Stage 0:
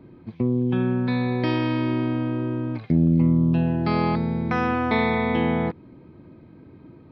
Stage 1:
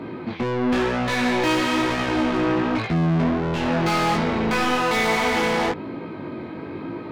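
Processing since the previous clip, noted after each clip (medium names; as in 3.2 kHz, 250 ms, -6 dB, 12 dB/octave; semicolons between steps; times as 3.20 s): overdrive pedal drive 37 dB, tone 3.9 kHz, clips at -7.5 dBFS; chorus 1 Hz, delay 17.5 ms, depth 4.7 ms; trim -4 dB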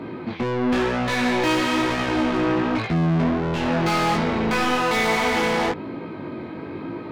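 no audible change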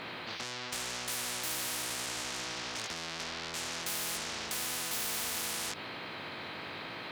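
high-pass 210 Hz 12 dB/octave; spectrum-flattening compressor 10:1; trim -8 dB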